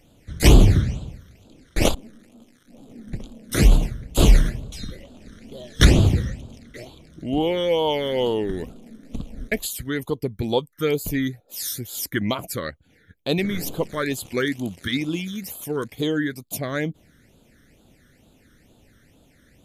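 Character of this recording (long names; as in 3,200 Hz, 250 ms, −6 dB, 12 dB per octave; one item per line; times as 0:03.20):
phaser sweep stages 12, 2.2 Hz, lowest notch 800–1,900 Hz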